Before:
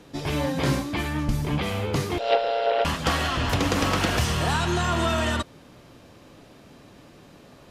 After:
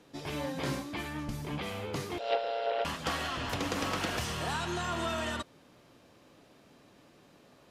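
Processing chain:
low-shelf EQ 120 Hz −9.5 dB
level −8.5 dB

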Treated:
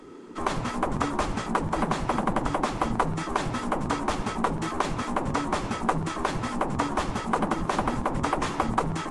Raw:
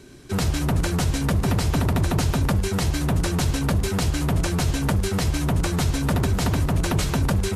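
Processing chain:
bass and treble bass +12 dB, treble −12 dB
hum with harmonics 50 Hz, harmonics 13, −39 dBFS −8 dB per octave
speed change −17%
mains-hum notches 50/100/150 Hz
gate on every frequency bin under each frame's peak −10 dB weak
noise in a band 240–430 Hz −44 dBFS
octave-band graphic EQ 125/1,000/8,000 Hz −8/+10/+6 dB
level −2.5 dB

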